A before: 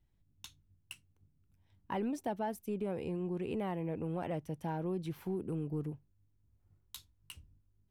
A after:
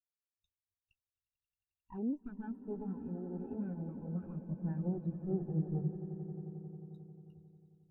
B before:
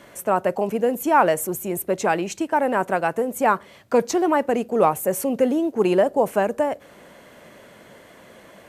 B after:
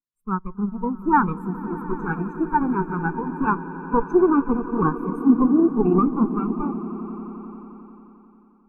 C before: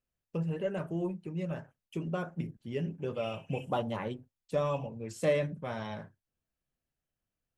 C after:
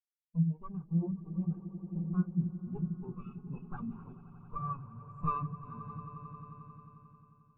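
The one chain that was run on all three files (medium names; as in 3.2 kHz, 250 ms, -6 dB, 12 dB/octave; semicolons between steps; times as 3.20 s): comb filter that takes the minimum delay 0.79 ms; echo with a slow build-up 89 ms, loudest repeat 8, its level -10.5 dB; spectral contrast expander 2.5:1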